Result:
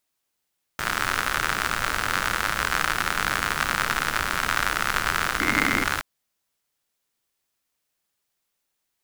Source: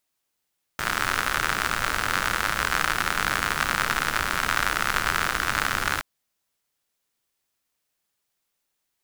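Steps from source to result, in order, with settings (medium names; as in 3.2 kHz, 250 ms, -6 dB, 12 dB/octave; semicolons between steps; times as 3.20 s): 5.40–5.84 s: small resonant body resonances 270/2100 Hz, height 15 dB, ringing for 25 ms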